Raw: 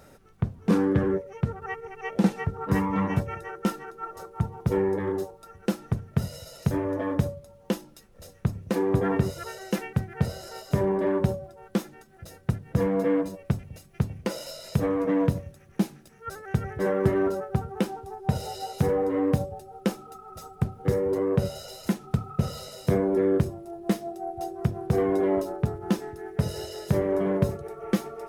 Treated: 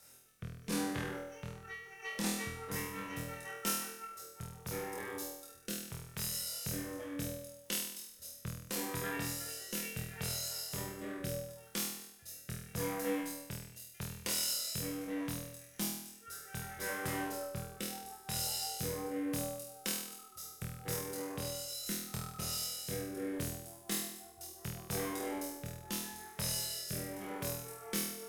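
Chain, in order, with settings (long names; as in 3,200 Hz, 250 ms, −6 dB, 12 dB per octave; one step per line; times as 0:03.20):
first-order pre-emphasis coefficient 0.8
harmonic generator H 8 −25 dB, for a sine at −21.5 dBFS
rotating-speaker cabinet horn 0.75 Hz
tilt shelving filter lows −6 dB
on a send: flutter between parallel walls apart 4.2 metres, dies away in 0.76 s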